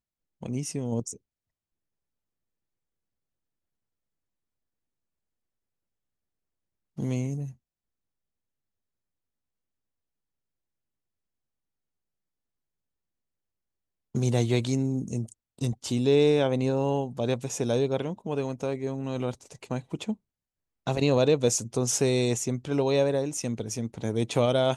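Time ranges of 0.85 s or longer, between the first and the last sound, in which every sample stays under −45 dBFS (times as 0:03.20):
0:01.17–0:06.98
0:07.52–0:14.15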